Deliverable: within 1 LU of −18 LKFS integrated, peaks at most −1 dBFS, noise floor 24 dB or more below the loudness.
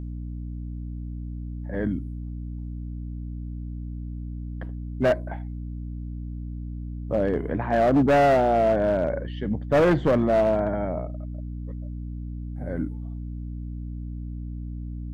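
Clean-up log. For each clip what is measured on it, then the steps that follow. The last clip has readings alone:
share of clipped samples 1.7%; peaks flattened at −15.0 dBFS; mains hum 60 Hz; hum harmonics up to 300 Hz; level of the hum −31 dBFS; integrated loudness −27.0 LKFS; sample peak −15.0 dBFS; target loudness −18.0 LKFS
→ clipped peaks rebuilt −15 dBFS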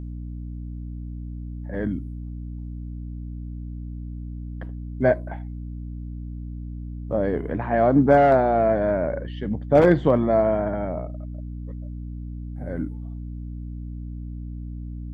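share of clipped samples 0.0%; mains hum 60 Hz; hum harmonics up to 300 Hz; level of the hum −31 dBFS
→ mains-hum notches 60/120/180/240/300 Hz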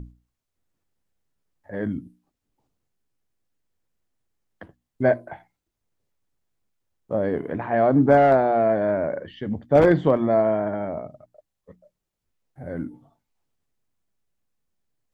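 mains hum none found; integrated loudness −21.5 LKFS; sample peak −5.5 dBFS; target loudness −18.0 LKFS
→ level +3.5 dB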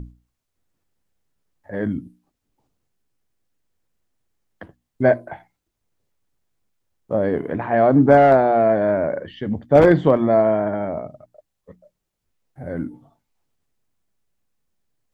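integrated loudness −18.0 LKFS; sample peak −2.0 dBFS; background noise floor −78 dBFS

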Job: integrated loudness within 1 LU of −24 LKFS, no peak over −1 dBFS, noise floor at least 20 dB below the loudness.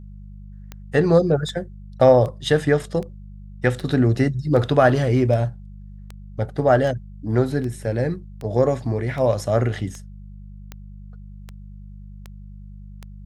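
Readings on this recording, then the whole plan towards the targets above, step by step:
number of clicks 17; mains hum 50 Hz; hum harmonics up to 200 Hz; level of the hum −37 dBFS; integrated loudness −20.5 LKFS; sample peak −3.0 dBFS; target loudness −24.0 LKFS
→ click removal
hum removal 50 Hz, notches 4
level −3.5 dB

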